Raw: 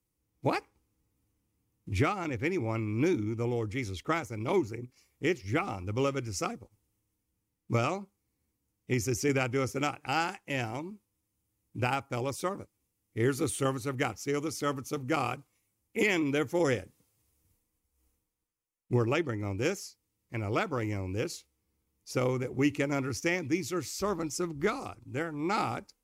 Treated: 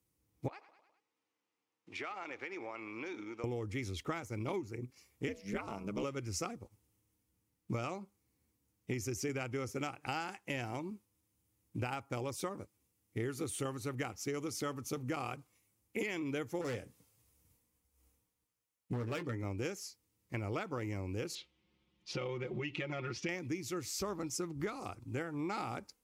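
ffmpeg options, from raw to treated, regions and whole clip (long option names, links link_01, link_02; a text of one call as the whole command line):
ffmpeg -i in.wav -filter_complex "[0:a]asettb=1/sr,asplit=3[link_01][link_02][link_03];[link_01]atrim=end=0.484[link_04];[link_02]atrim=start=0.48:end=3.44,asetpts=PTS-STARTPTS,afade=type=in:duration=0.004:curve=qsin,afade=type=out:start_time=2.956:duration=0.004:curve=qsin,highpass=610,lowpass=4400,acompressor=threshold=-41dB:ratio=4:attack=3.2:release=140:knee=1:detection=peak,aecho=1:1:103|206|309|412:0.1|0.056|0.0314|0.0176,atrim=end_sample=130536[link_05];[link_03]atrim=start=3.436[link_06];[link_04][link_05]acrossfade=duration=0.004:curve1=hsin:curve2=qsin[link_07];[link_07][link_06]acrossfade=duration=0.004:curve1=qsin:curve2=hsin,asettb=1/sr,asplit=3[link_08][link_09][link_10];[link_08]atrim=end=5.284[link_11];[link_09]atrim=start=5.28:end=6.03,asetpts=PTS-STARTPTS,afade=type=in:duration=0.004:curve=qsin,afade=type=out:start_time=0.746:duration=0.004:curve=qsin,aeval=exprs='val(0)*sin(2*PI*100*n/s)':channel_layout=same,bandreject=frequency=162.8:width_type=h:width=4,bandreject=frequency=325.6:width_type=h:width=4,bandreject=frequency=488.4:width_type=h:width=4,bandreject=frequency=651.2:width_type=h:width=4,bandreject=frequency=814:width_type=h:width=4,bandreject=frequency=976.8:width_type=h:width=4,bandreject=frequency=1139.6:width_type=h:width=4,bandreject=frequency=1302.4:width_type=h:width=4[link_12];[link_10]atrim=start=6.026[link_13];[link_11][link_12]acrossfade=duration=0.004:curve1=hsin:curve2=qsin[link_14];[link_14][link_13]acrossfade=duration=0.004:curve1=qsin:curve2=hsin,asettb=1/sr,asplit=3[link_15][link_16][link_17];[link_15]atrim=end=16.614[link_18];[link_16]atrim=start=16.61:end=19.44,asetpts=PTS-STARTPTS,afade=type=in:duration=0.004:curve=qsin,afade=type=out:start_time=2.826:duration=0.004:curve=qsin,asoftclip=type=hard:threshold=-26dB,bandreject=frequency=350:width=9.3,asplit=2[link_19][link_20];[link_20]adelay=17,volume=-10.5dB[link_21];[link_19][link_21]amix=inputs=2:normalize=0,atrim=end_sample=124803[link_22];[link_17]atrim=start=19.436[link_23];[link_18][link_22]acrossfade=duration=0.004:curve1=hsin:curve2=qsin[link_24];[link_24][link_23]acrossfade=duration=0.004:curve1=qsin:curve2=hsin,asettb=1/sr,asplit=3[link_25][link_26][link_27];[link_25]atrim=end=21.354[link_28];[link_26]atrim=start=21.35:end=23.29,asetpts=PTS-STARTPTS,afade=type=in:duration=0.004:curve=qsin,afade=type=out:start_time=1.936:duration=0.004:curve=qsin,acompressor=threshold=-39dB:ratio=2.5:attack=3.2:release=140:knee=1:detection=peak,lowpass=frequency=3300:width_type=q:width=3,aecho=1:1:5.6:0.99,atrim=end_sample=85554[link_29];[link_27]atrim=start=23.286[link_30];[link_28][link_29]acrossfade=duration=0.004:curve1=hsin:curve2=qsin[link_31];[link_31][link_30]acrossfade=duration=0.004:curve1=qsin:curve2=hsin,highpass=54,acompressor=threshold=-37dB:ratio=6,volume=1.5dB" out.wav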